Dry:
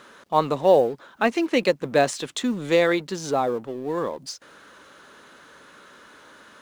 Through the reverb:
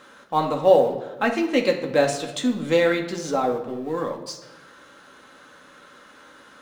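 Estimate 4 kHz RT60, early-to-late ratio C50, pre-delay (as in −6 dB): 0.75 s, 8.5 dB, 4 ms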